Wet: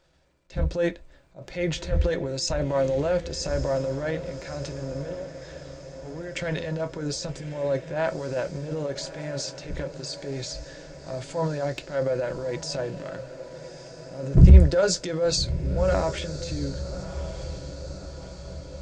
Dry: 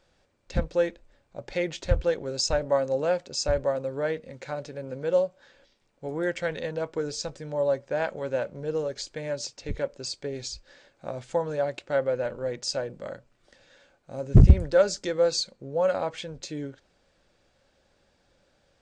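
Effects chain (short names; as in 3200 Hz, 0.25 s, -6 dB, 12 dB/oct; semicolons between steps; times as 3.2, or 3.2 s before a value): transient shaper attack -8 dB, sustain +7 dB; 5.01–6.35 compressor, threshold -37 dBFS, peak gain reduction 15.5 dB; diffused feedback echo 1.199 s, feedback 58%, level -13 dB; on a send at -8 dB: reverb, pre-delay 3 ms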